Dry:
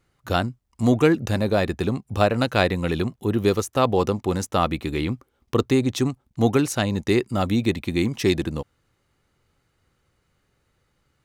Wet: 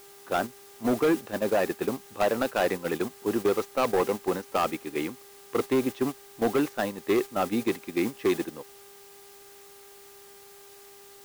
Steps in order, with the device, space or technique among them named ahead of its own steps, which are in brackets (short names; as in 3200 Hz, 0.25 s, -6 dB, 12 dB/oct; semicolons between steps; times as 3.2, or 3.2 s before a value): aircraft radio (BPF 310–2300 Hz; hard clip -18.5 dBFS, distortion -10 dB; buzz 400 Hz, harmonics 5, -45 dBFS -8 dB/oct; white noise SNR 15 dB; gate -28 dBFS, range -9 dB)